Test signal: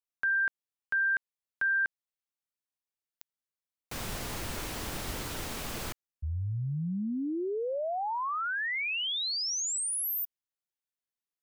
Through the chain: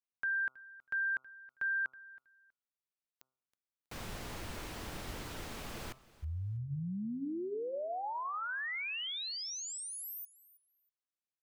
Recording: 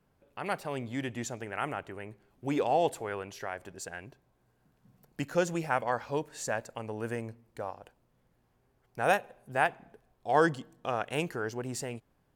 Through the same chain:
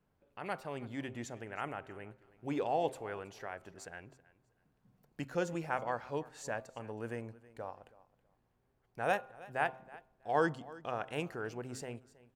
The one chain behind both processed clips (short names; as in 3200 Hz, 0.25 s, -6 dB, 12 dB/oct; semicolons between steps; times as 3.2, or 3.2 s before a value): high shelf 5600 Hz -7 dB; de-hum 130.2 Hz, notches 11; on a send: feedback echo 0.322 s, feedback 20%, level -20 dB; on the sum: gain -5.5 dB